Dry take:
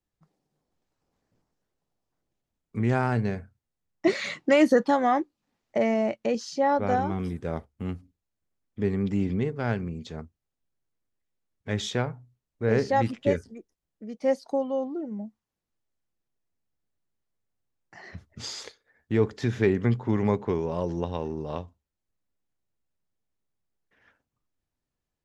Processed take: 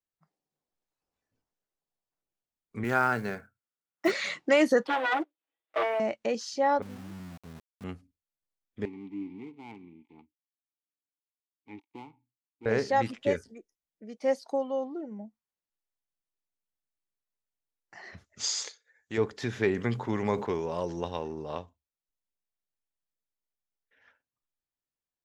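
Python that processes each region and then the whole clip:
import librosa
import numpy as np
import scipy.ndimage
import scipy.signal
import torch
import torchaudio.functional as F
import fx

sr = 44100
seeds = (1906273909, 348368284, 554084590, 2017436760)

y = fx.chain(x, sr, fx.highpass(hz=130.0, slope=12),
    fx.peak_eq(hz=1400.0, db=10.0, octaves=0.35),
    fx.quant_float(bits=4), at=(2.84, 4.12))
y = fx.chain(y, sr, fx.lower_of_two(delay_ms=6.2),
    fx.cheby1_bandpass(low_hz=270.0, high_hz=3600.0, order=4),
    fx.leveller(passes=1), at=(4.87, 6.0))
y = fx.chain(y, sr, fx.ladder_lowpass(hz=280.0, resonance_pct=25),
    fx.sample_gate(floor_db=-43.0), at=(6.82, 7.84))
y = fx.chain(y, sr, fx.dead_time(dead_ms=0.23),
    fx.vowel_filter(vowel='u'),
    fx.low_shelf(hz=160.0, db=6.0), at=(8.85, 12.66))
y = fx.chain(y, sr, fx.lowpass_res(hz=6800.0, q=3.3),
    fx.low_shelf(hz=370.0, db=-8.0), at=(18.24, 19.18))
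y = fx.chain(y, sr, fx.high_shelf(hz=4000.0, db=5.0),
    fx.sustainer(db_per_s=120.0), at=(19.73, 21.19))
y = fx.noise_reduce_blind(y, sr, reduce_db=9)
y = fx.low_shelf(y, sr, hz=300.0, db=-10.0)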